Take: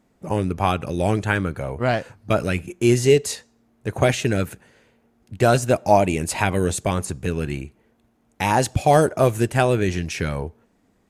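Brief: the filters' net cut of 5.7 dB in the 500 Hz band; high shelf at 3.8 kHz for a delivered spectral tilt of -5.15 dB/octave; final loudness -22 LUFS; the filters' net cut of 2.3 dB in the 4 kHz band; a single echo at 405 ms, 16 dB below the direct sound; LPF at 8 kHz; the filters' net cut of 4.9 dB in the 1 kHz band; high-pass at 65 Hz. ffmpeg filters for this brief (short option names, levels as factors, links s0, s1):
-af "highpass=65,lowpass=8000,equalizer=f=500:t=o:g=-6.5,equalizer=f=1000:t=o:g=-4,highshelf=f=3800:g=7.5,equalizer=f=4000:t=o:g=-7.5,aecho=1:1:405:0.158,volume=1.26"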